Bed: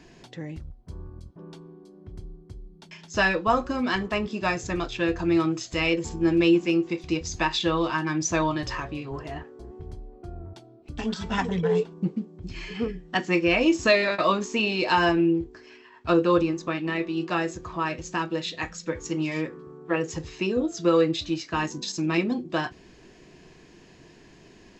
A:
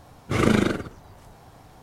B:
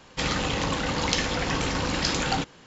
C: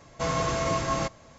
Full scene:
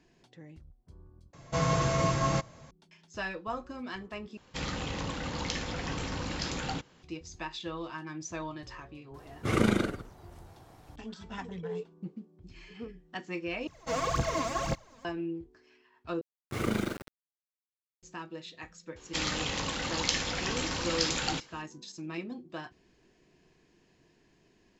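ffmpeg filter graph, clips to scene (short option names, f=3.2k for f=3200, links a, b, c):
-filter_complex "[3:a]asplit=2[a][b];[2:a]asplit=2[c][d];[1:a]asplit=2[e][f];[0:a]volume=-14dB[g];[a]equalizer=f=140:w=2:g=7.5[h];[c]equalizer=f=85:w=0.4:g=4[i];[b]aphaser=in_gain=1:out_gain=1:delay=4.6:decay=0.75:speed=1.9:type=triangular[j];[f]aeval=exprs='val(0)*gte(abs(val(0)),0.0398)':c=same[k];[d]highshelf=f=2.2k:g=8[l];[g]asplit=5[m][n][o][p][q];[m]atrim=end=1.334[r];[h]atrim=end=1.38,asetpts=PTS-STARTPTS,volume=-2dB[s];[n]atrim=start=2.706:end=4.374[t];[i]atrim=end=2.66,asetpts=PTS-STARTPTS,volume=-10dB[u];[o]atrim=start=7.026:end=13.674[v];[j]atrim=end=1.38,asetpts=PTS-STARTPTS,volume=-7.5dB[w];[p]atrim=start=15.046:end=16.214[x];[k]atrim=end=1.82,asetpts=PTS-STARTPTS,volume=-11dB[y];[q]atrim=start=18.026[z];[e]atrim=end=1.82,asetpts=PTS-STARTPTS,volume=-6dB,afade=t=in:d=0.004:c=hsin,afade=t=out:st=1.816:d=0.004:c=hsin,adelay=403074S[aa];[l]atrim=end=2.66,asetpts=PTS-STARTPTS,volume=-9dB,afade=t=in:d=0.004:c=hsin,afade=t=out:st=2.656:d=0.004:c=hsin,adelay=18960[ab];[r][s]acrossfade=d=0.004:c1=hsin:c2=hsin[ac];[ac][t]acrossfade=d=0.004:c1=hsin:c2=hsin[ad];[ad][u]acrossfade=d=0.004:c1=hsin:c2=hsin[ae];[ae][v]acrossfade=d=0.004:c1=hsin:c2=hsin[af];[af][w]acrossfade=d=0.004:c1=hsin:c2=hsin[ag];[ag][x]acrossfade=d=0.004:c1=hsin:c2=hsin[ah];[ah][y]acrossfade=d=0.004:c1=hsin:c2=hsin[ai];[ai][z]acrossfade=d=0.004:c1=hsin:c2=hsin[aj];[aj][aa][ab]amix=inputs=3:normalize=0"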